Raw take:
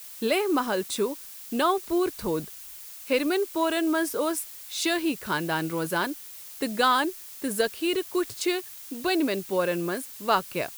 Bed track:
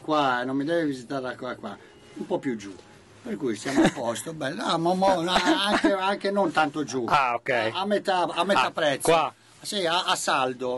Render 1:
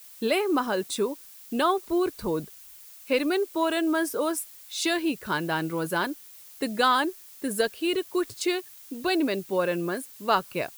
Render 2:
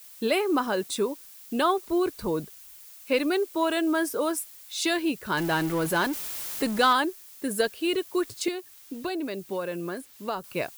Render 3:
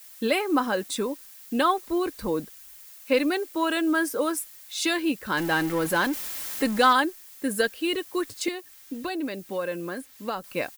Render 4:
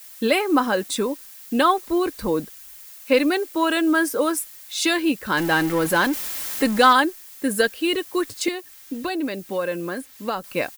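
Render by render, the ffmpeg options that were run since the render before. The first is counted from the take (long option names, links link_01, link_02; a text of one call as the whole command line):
ffmpeg -i in.wav -af "afftdn=noise_reduction=6:noise_floor=-43" out.wav
ffmpeg -i in.wav -filter_complex "[0:a]asettb=1/sr,asplit=3[link_01][link_02][link_03];[link_01]atrim=end=5.374[link_04];[link_02]atrim=start=5.37:end=6.93,asetpts=PTS-STARTPTS,afade=type=in:duration=0.004:curve=qsin,afade=type=out:start_time=1.556:duration=0.004:curve=qsin,aeval=exprs='val(0)+0.5*0.0299*sgn(val(0))':channel_layout=same[link_05];[link_03]atrim=start=6.926[link_06];[link_04][link_05]acrossfade=duration=0.004:curve1=hsin:curve2=qsin[link_07];[link_07][link_06]acrossfade=duration=0.004:curve1=qsin:curve2=hsin,asettb=1/sr,asplit=3[link_08][link_09][link_10];[link_08]atrim=end=8.484[link_11];[link_09]atrim=start=8.48:end=10.44,asetpts=PTS-STARTPTS,afade=type=in:duration=0.004:curve=qsin,afade=type=out:start_time=1.956:duration=0.004:curve=qsin,acrossover=split=950|5100[link_12][link_13][link_14];[link_12]acompressor=threshold=-30dB:ratio=4[link_15];[link_13]acompressor=threshold=-40dB:ratio=4[link_16];[link_14]acompressor=threshold=-48dB:ratio=4[link_17];[link_15][link_16][link_17]amix=inputs=3:normalize=0[link_18];[link_10]atrim=start=10.436[link_19];[link_11][link_18]acrossfade=duration=0.004:curve1=hsin:curve2=qsin[link_20];[link_20][link_19]acrossfade=duration=0.004:curve1=qsin:curve2=hsin" out.wav
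ffmpeg -i in.wav -af "equalizer=frequency=1800:width_type=o:width=0.47:gain=4,aecho=1:1:3.8:0.39" out.wav
ffmpeg -i in.wav -af "volume=4.5dB" out.wav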